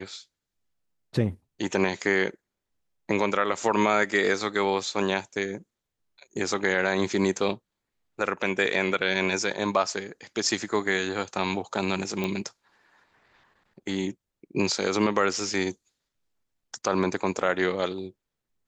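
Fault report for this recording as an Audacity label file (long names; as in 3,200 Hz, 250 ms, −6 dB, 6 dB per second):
12.240000	12.240000	click −15 dBFS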